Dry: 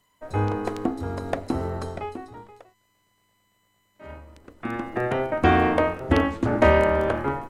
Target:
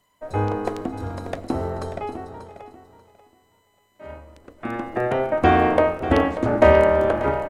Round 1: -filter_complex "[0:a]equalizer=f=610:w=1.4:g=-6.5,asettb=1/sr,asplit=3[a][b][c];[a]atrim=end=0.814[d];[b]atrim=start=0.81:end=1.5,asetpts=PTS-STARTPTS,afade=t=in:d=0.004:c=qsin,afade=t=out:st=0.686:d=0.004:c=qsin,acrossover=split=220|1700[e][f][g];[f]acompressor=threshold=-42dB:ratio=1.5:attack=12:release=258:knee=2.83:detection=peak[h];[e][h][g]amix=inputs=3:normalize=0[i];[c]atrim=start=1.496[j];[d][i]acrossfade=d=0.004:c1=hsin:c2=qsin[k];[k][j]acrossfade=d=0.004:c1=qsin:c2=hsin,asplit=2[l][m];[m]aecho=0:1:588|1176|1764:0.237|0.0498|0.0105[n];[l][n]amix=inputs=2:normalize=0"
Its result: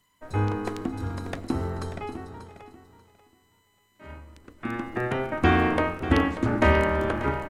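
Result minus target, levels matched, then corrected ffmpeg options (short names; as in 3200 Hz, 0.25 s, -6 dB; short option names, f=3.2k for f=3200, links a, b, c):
500 Hz band -4.0 dB
-filter_complex "[0:a]equalizer=f=610:w=1.4:g=5,asettb=1/sr,asplit=3[a][b][c];[a]atrim=end=0.814[d];[b]atrim=start=0.81:end=1.5,asetpts=PTS-STARTPTS,afade=t=in:d=0.004:c=qsin,afade=t=out:st=0.686:d=0.004:c=qsin,acrossover=split=220|1700[e][f][g];[f]acompressor=threshold=-42dB:ratio=1.5:attack=12:release=258:knee=2.83:detection=peak[h];[e][h][g]amix=inputs=3:normalize=0[i];[c]atrim=start=1.496[j];[d][i]acrossfade=d=0.004:c1=hsin:c2=qsin[k];[k][j]acrossfade=d=0.004:c1=qsin:c2=hsin,asplit=2[l][m];[m]aecho=0:1:588|1176|1764:0.237|0.0498|0.0105[n];[l][n]amix=inputs=2:normalize=0"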